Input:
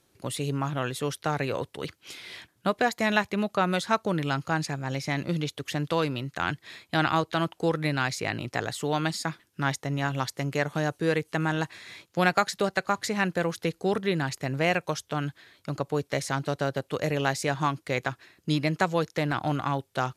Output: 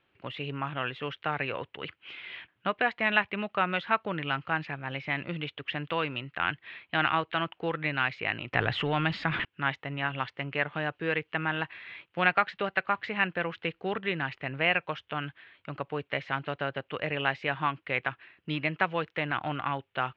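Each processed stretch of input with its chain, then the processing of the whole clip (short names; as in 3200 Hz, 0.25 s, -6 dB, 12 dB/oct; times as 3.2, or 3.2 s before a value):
8.53–9.45 G.711 law mismatch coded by mu + low shelf 170 Hz +11.5 dB + fast leveller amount 70%
whole clip: Chebyshev low-pass 2900 Hz, order 4; tilt shelf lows -7 dB, about 1300 Hz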